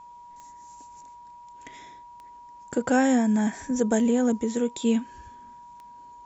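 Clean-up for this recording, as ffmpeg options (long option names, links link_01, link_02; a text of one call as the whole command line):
ffmpeg -i in.wav -af "adeclick=threshold=4,bandreject=frequency=960:width=30" out.wav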